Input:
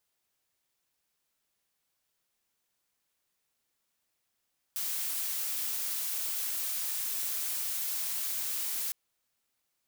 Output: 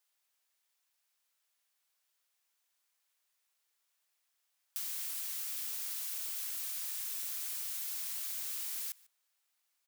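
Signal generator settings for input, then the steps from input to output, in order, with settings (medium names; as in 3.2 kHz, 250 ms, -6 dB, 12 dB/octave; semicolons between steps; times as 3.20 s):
noise blue, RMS -33.5 dBFS 4.16 s
Bessel high-pass 870 Hz, order 2; compression 5:1, threshold -36 dBFS; echo from a far wall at 25 m, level -21 dB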